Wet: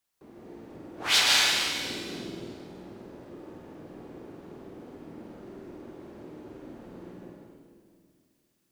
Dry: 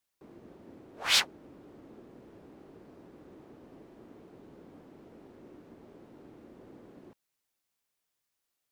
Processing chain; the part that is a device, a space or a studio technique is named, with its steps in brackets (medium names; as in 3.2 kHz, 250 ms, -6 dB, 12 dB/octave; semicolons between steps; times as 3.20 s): tunnel (flutter echo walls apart 8.4 m, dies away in 0.56 s; reverberation RT60 2.2 s, pre-delay 119 ms, DRR -3.5 dB); 1.85–2.54 s: peaking EQ 190 Hz +5.5 dB 2.9 oct; trim +1 dB